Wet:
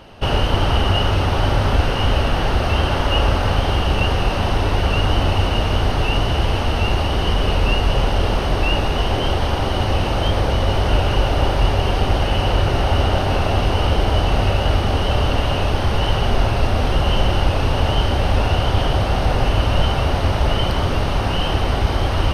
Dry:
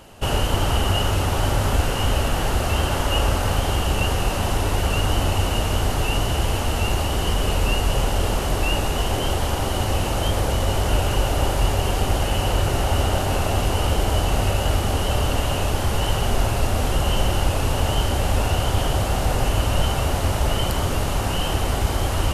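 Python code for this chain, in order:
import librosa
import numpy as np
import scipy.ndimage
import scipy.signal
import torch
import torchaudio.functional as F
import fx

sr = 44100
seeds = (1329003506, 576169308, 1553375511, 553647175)

y = scipy.signal.savgol_filter(x, 15, 4, mode='constant')
y = F.gain(torch.from_numpy(y), 3.5).numpy()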